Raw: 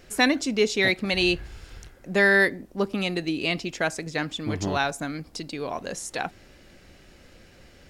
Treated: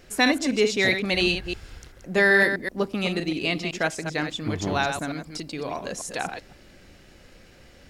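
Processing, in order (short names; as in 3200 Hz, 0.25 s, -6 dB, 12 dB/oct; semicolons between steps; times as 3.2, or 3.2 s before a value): reverse delay 0.128 s, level -7 dB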